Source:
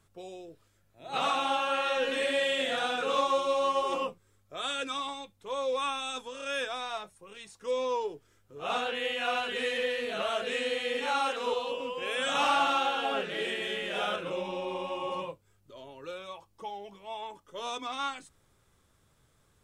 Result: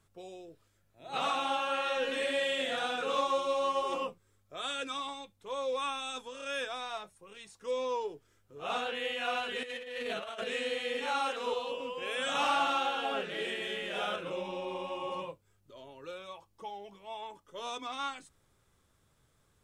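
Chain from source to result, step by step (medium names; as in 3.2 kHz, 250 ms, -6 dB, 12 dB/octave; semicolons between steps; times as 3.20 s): 9.63–10.44 s: compressor with a negative ratio -35 dBFS, ratio -0.5; trim -3 dB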